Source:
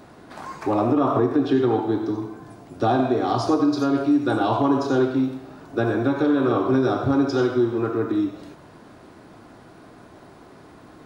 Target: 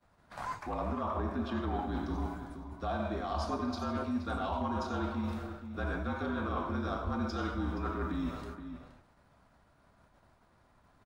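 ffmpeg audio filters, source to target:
ffmpeg -i in.wav -filter_complex "[0:a]agate=range=-33dB:threshold=-34dB:ratio=3:detection=peak,equalizer=frequency=360:width_type=o:width=1.8:gain=-15,areverse,acompressor=threshold=-38dB:ratio=6,areverse,afreqshift=-44,asplit=2[link_01][link_02];[link_02]adynamicsmooth=sensitivity=6.5:basefreq=2200,volume=0dB[link_03];[link_01][link_03]amix=inputs=2:normalize=0,asplit=2[link_04][link_05];[link_05]adelay=472.3,volume=-9dB,highshelf=frequency=4000:gain=-10.6[link_06];[link_04][link_06]amix=inputs=2:normalize=0" out.wav

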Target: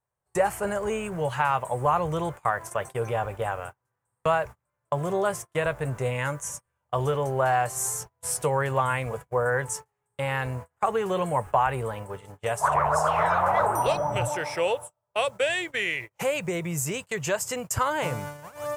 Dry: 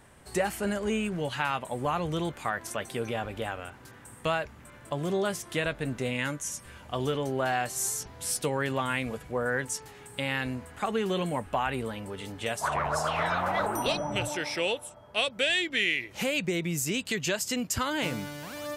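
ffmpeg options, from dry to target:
ffmpeg -i in.wav -af "acrusher=bits=9:mix=0:aa=0.000001,equalizer=frequency=125:width_type=o:width=1:gain=9,equalizer=frequency=250:width_type=o:width=1:gain=-11,equalizer=frequency=500:width_type=o:width=1:gain=6,equalizer=frequency=1000:width_type=o:width=1:gain=8,equalizer=frequency=4000:width_type=o:width=1:gain=-9,equalizer=frequency=8000:width_type=o:width=1:gain=4,agate=range=-35dB:threshold=-35dB:ratio=16:detection=peak" out.wav

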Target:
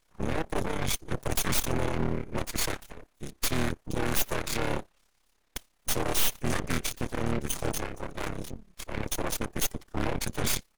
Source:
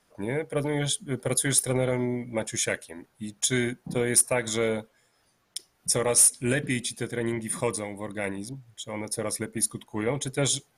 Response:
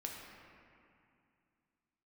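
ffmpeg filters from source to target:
-filter_complex "[0:a]highpass=53,acrossover=split=170|6500[link_01][link_02][link_03];[link_02]alimiter=limit=-21.5dB:level=0:latency=1:release=11[link_04];[link_01][link_04][link_03]amix=inputs=3:normalize=0,asplit=2[link_05][link_06];[link_06]asetrate=29433,aresample=44100,atempo=1.49831,volume=0dB[link_07];[link_05][link_07]amix=inputs=2:normalize=0,aeval=exprs='0.473*(cos(1*acos(clip(val(0)/0.473,-1,1)))-cos(1*PI/2))+0.0335*(cos(7*acos(clip(val(0)/0.473,-1,1)))-cos(7*PI/2))+0.0473*(cos(8*acos(clip(val(0)/0.473,-1,1)))-cos(8*PI/2))':channel_layout=same,aeval=exprs='abs(val(0))':channel_layout=same,tremolo=f=34:d=0.667,volume=23dB,asoftclip=hard,volume=-23dB,volume=5dB"

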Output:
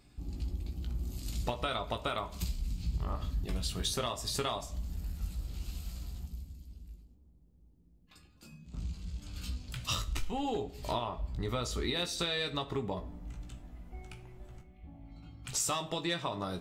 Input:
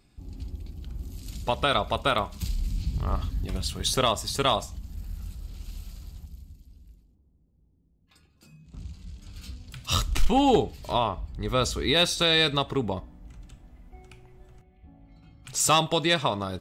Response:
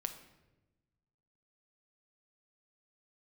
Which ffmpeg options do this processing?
-filter_complex "[0:a]acompressor=threshold=-31dB:ratio=12,asplit=2[link_01][link_02];[1:a]atrim=start_sample=2205,asetrate=83790,aresample=44100,adelay=17[link_03];[link_02][link_03]afir=irnorm=-1:irlink=0,volume=0.5dB[link_04];[link_01][link_04]amix=inputs=2:normalize=0"

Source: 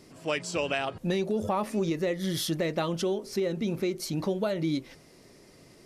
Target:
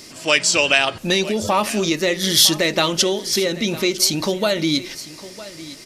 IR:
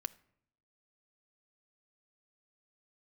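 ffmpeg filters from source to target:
-filter_complex "[0:a]aecho=1:1:956:0.141,asplit=2[link_01][link_02];[1:a]atrim=start_sample=2205,lowpass=7000[link_03];[link_02][link_03]afir=irnorm=-1:irlink=0,volume=7.5dB[link_04];[link_01][link_04]amix=inputs=2:normalize=0,crystalizer=i=9:c=0,volume=-3dB"

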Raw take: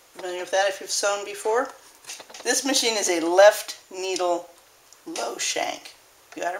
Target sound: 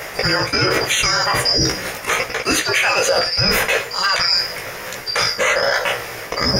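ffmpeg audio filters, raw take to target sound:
ffmpeg -i in.wav -af "afftfilt=real='real(if(lt(b,272),68*(eq(floor(b/68),0)*1+eq(floor(b/68),1)*2+eq(floor(b/68),2)*3+eq(floor(b/68),3)*0)+mod(b,68),b),0)':imag='imag(if(lt(b,272),68*(eq(floor(b/68),0)*1+eq(floor(b/68),1)*2+eq(floor(b/68),2)*3+eq(floor(b/68),3)*0)+mod(b,68),b),0)':win_size=2048:overlap=0.75,equalizer=frequency=125:width_type=o:width=1:gain=6,equalizer=frequency=250:width_type=o:width=1:gain=-7,equalizer=frequency=500:width_type=o:width=1:gain=12,equalizer=frequency=2000:width_type=o:width=1:gain=11,equalizer=frequency=4000:width_type=o:width=1:gain=-8,equalizer=frequency=8000:width_type=o:width=1:gain=-7,areverse,acompressor=threshold=-37dB:ratio=4,areverse,flanger=delay=15.5:depth=2.5:speed=1.2,alimiter=level_in=33.5dB:limit=-1dB:release=50:level=0:latency=1,volume=-6dB" out.wav

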